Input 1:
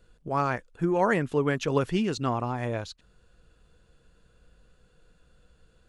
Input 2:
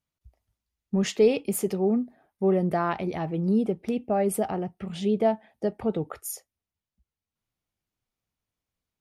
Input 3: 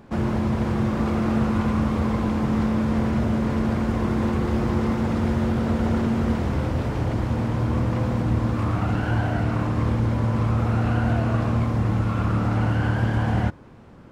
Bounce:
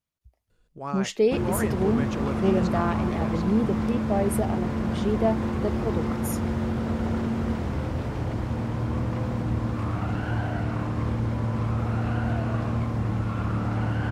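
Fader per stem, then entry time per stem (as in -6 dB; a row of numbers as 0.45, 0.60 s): -7.0, -1.5, -4.5 dB; 0.50, 0.00, 1.20 s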